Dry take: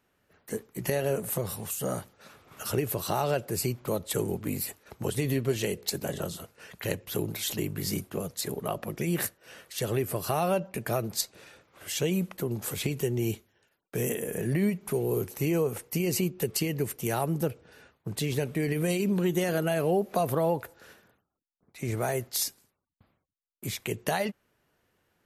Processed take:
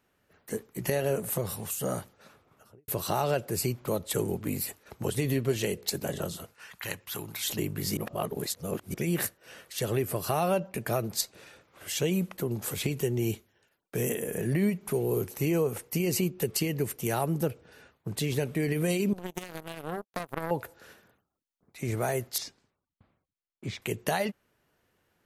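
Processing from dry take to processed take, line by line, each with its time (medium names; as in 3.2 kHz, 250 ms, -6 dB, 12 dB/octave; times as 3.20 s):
2.00–2.88 s: studio fade out
6.54–7.44 s: resonant low shelf 720 Hz -8.5 dB, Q 1.5
7.97–8.94 s: reverse
19.13–20.51 s: power-law waveshaper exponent 3
22.38–23.82 s: distance through air 140 m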